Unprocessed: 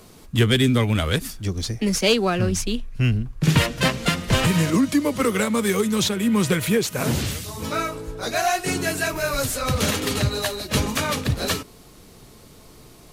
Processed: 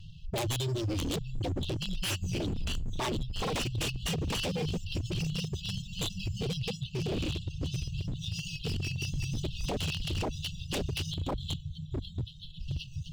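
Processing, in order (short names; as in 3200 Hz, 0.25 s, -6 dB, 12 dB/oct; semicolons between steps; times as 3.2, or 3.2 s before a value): compressor 2:1, threshold -25 dBFS, peak gain reduction 7.5 dB; echo with dull and thin repeats by turns 0.653 s, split 1200 Hz, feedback 79%, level -8.5 dB; reverb removal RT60 1.3 s; 11.12–12.6 spectral gain 450–3000 Hz -16 dB; careless resampling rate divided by 6×, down filtered, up hold; brick-wall FIR band-stop 170–2600 Hz; air absorption 210 m; vibrato 3 Hz 33 cents; 6.56–7.9 high shelf 9300 Hz -8 dB; on a send at -24 dB: reverb, pre-delay 5 ms; on the sum: wavefolder -34.5 dBFS; gain +8 dB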